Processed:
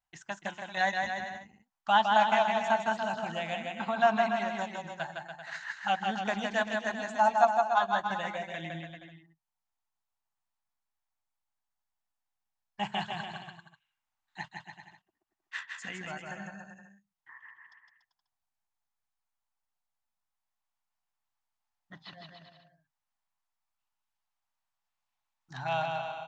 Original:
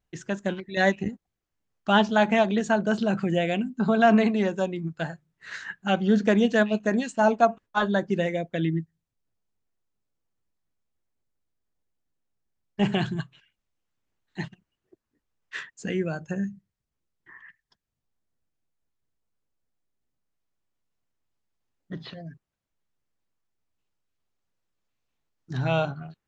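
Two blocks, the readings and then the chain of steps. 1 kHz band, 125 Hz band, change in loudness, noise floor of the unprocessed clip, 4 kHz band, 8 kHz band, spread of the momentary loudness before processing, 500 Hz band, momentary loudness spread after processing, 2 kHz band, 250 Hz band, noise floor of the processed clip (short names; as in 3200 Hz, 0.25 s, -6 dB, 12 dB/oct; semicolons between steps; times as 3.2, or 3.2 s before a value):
+1.0 dB, -15.0 dB, -5.5 dB, -84 dBFS, -3.0 dB, n/a, 17 LU, -7.5 dB, 19 LU, -3.0 dB, -15.5 dB, under -85 dBFS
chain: vibrato 1.1 Hz 17 cents; dynamic EQ 1300 Hz, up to -3 dB, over -33 dBFS, Q 0.99; transient shaper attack +2 dB, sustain -5 dB; resonant low shelf 600 Hz -11 dB, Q 3; bouncing-ball echo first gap 0.16 s, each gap 0.8×, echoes 5; gain -5.5 dB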